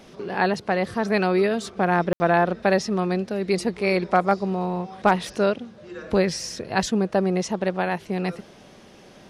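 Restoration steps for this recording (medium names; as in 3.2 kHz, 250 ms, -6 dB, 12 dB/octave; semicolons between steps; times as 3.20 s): clip repair -7 dBFS; room tone fill 2.13–2.20 s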